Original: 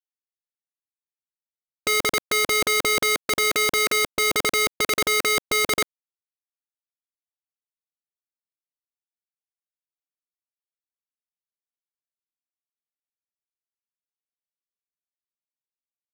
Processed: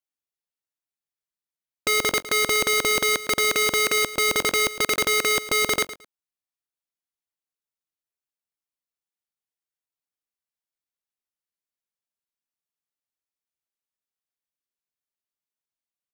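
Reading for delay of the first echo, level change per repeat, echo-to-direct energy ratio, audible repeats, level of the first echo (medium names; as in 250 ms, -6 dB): 110 ms, -14.0 dB, -14.5 dB, 2, -14.5 dB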